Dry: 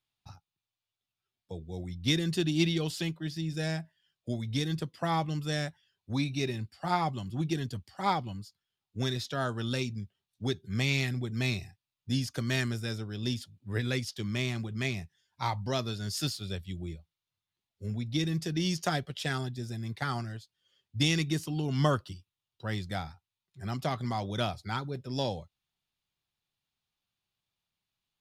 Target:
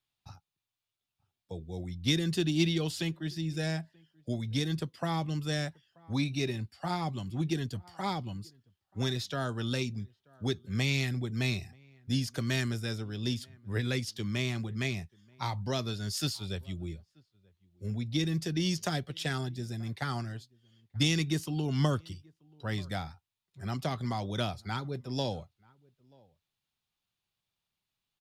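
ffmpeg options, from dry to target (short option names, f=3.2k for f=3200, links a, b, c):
-filter_complex "[0:a]asplit=2[a][b];[b]adelay=932.9,volume=-28dB,highshelf=f=4k:g=-21[c];[a][c]amix=inputs=2:normalize=0,acrossover=split=410|3000[d][e][f];[e]acompressor=threshold=-33dB:ratio=6[g];[d][g][f]amix=inputs=3:normalize=0"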